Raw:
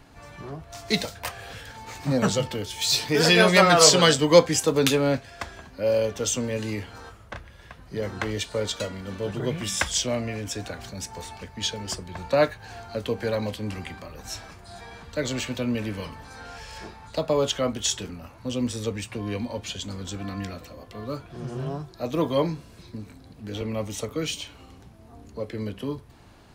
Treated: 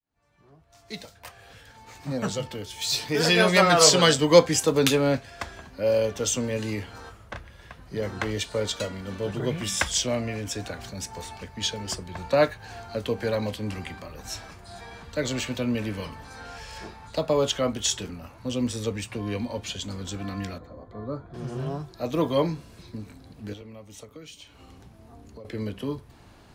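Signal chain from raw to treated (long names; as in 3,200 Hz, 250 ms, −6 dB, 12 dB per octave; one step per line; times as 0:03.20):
fade in at the beginning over 4.47 s
0:20.58–0:21.34: moving average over 16 samples
0:23.53–0:25.45: downward compressor 5 to 1, threshold −43 dBFS, peak gain reduction 17 dB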